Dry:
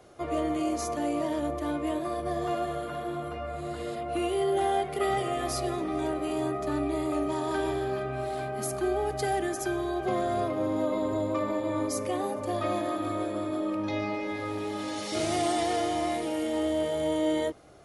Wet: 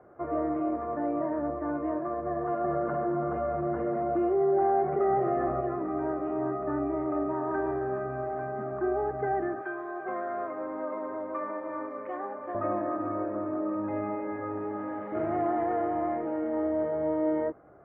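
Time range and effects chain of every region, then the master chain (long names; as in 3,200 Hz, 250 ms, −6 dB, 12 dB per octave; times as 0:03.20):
0:02.64–0:05.61: parametric band 7,500 Hz −9 dB 2.9 octaves + comb filter 5.3 ms, depth 39% + envelope flattener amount 50%
0:09.61–0:12.55: high-pass filter 210 Hz + tilt shelving filter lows −8.5 dB, about 1,200 Hz
whole clip: Butterworth low-pass 1,700 Hz 36 dB per octave; low-shelf EQ 76 Hz −11.5 dB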